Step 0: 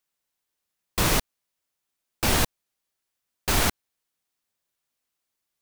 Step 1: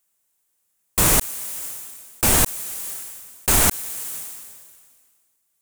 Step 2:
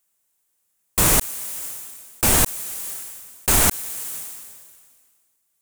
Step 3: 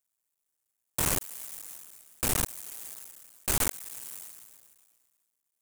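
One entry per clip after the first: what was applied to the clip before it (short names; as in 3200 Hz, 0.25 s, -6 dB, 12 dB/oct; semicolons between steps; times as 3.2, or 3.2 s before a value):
in parallel at +1.5 dB: limiter -16.5 dBFS, peak gain reduction 7 dB; on the sum: resonant high shelf 6200 Hz +7.5 dB, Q 1.5; sustainer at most 32 dB/s; gain -2 dB
nothing audible
cycle switcher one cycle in 2, muted; gain -8.5 dB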